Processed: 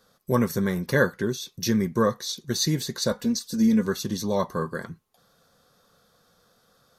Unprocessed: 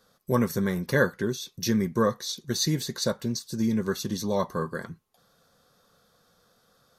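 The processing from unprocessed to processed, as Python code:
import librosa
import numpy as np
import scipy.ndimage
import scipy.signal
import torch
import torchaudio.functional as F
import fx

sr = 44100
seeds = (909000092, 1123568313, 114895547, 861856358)

y = fx.comb(x, sr, ms=4.1, depth=0.81, at=(3.11, 3.86))
y = y * 10.0 ** (1.5 / 20.0)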